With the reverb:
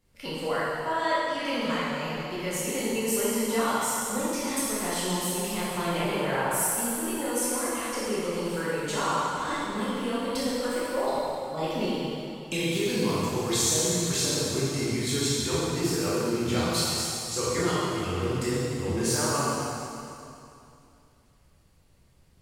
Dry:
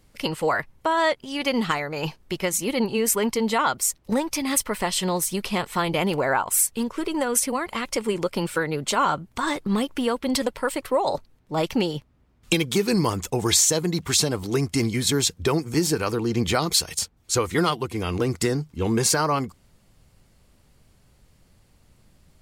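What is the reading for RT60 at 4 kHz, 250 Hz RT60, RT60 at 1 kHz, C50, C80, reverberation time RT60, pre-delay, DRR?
2.5 s, 2.9 s, 2.7 s, −4.0 dB, −2.0 dB, 2.7 s, 6 ms, −9.5 dB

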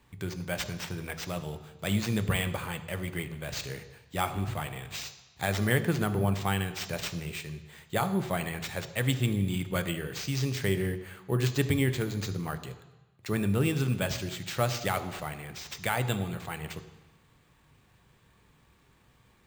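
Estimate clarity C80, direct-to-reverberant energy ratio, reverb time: 13.5 dB, 9.0 dB, 1.1 s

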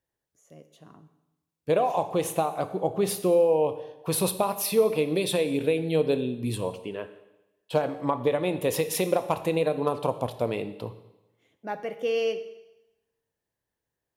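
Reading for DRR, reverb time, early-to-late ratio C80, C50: 10.5 dB, 0.95 s, 14.5 dB, 12.5 dB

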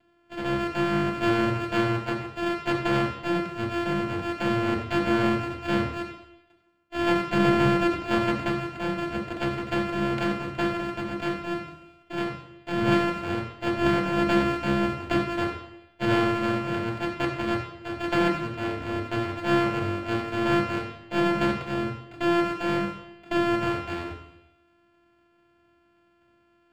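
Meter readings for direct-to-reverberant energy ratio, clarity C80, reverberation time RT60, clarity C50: −3.0 dB, 8.5 dB, 0.85 s, 6.5 dB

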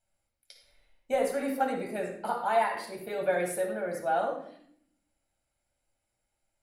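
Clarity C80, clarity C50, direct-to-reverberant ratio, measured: 8.0 dB, 4.0 dB, −0.5 dB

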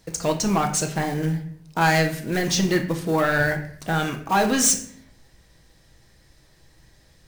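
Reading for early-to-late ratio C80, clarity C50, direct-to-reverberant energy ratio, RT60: 13.5 dB, 10.5 dB, 3.5 dB, 0.60 s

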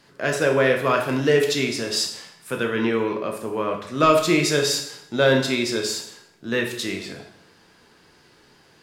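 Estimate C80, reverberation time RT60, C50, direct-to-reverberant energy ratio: 10.0 dB, 0.70 s, 7.0 dB, 2.0 dB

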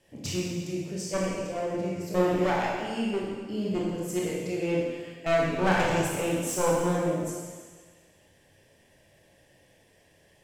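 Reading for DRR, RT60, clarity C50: −4.0 dB, 1.5 s, −0.5 dB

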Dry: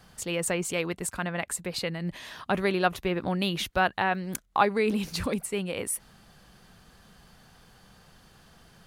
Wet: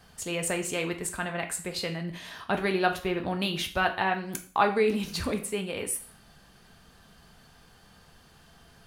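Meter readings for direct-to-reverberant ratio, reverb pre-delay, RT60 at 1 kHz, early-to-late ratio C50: 4.0 dB, 3 ms, 0.45 s, 11.5 dB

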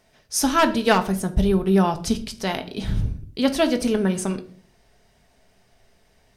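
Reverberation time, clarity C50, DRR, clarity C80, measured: 0.50 s, 15.0 dB, 6.5 dB, 19.5 dB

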